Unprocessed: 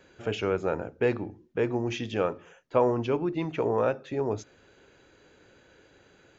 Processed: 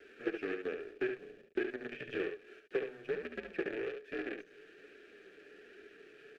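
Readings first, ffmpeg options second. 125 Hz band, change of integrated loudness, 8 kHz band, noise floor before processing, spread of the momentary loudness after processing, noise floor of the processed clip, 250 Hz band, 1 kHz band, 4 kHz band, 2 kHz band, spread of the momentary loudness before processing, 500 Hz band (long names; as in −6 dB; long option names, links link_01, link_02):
−24.0 dB, −11.0 dB, can't be measured, −60 dBFS, 18 LU, −61 dBFS, −10.5 dB, −20.0 dB, −11.5 dB, −3.0 dB, 8 LU, −11.0 dB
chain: -filter_complex "[0:a]aeval=exprs='0.335*(cos(1*acos(clip(val(0)/0.335,-1,1)))-cos(1*PI/2))+0.0133*(cos(6*acos(clip(val(0)/0.335,-1,1)))-cos(6*PI/2))+0.0422*(cos(8*acos(clip(val(0)/0.335,-1,1)))-cos(8*PI/2))':channel_layout=same,equalizer=frequency=1100:width_type=o:width=1.3:gain=10.5,bandreject=frequency=60:width_type=h:width=6,bandreject=frequency=120:width_type=h:width=6,acompressor=threshold=-34dB:ratio=20,acrusher=bits=6:dc=4:mix=0:aa=0.000001,acrossover=split=3600[link_01][link_02];[link_02]acompressor=threshold=-53dB:ratio=4:attack=1:release=60[link_03];[link_01][link_03]amix=inputs=2:normalize=0,asplit=3[link_04][link_05][link_06];[link_04]bandpass=frequency=530:width_type=q:width=8,volume=0dB[link_07];[link_05]bandpass=frequency=1840:width_type=q:width=8,volume=-6dB[link_08];[link_06]bandpass=frequency=2480:width_type=q:width=8,volume=-9dB[link_09];[link_07][link_08][link_09]amix=inputs=3:normalize=0,afreqshift=-110,flanger=delay=2.9:depth=4.1:regen=-35:speed=1.2:shape=sinusoidal,asplit=2[link_10][link_11];[link_11]aecho=0:1:71:0.473[link_12];[link_10][link_12]amix=inputs=2:normalize=0,volume=14.5dB"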